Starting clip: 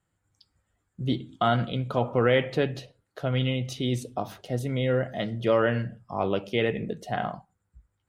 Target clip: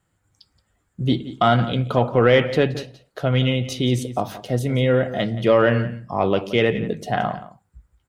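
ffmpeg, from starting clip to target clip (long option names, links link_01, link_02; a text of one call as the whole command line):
ffmpeg -i in.wav -filter_complex "[0:a]acontrast=86,asplit=2[link_01][link_02];[link_02]adelay=174.9,volume=-15dB,highshelf=frequency=4000:gain=-3.94[link_03];[link_01][link_03]amix=inputs=2:normalize=0" out.wav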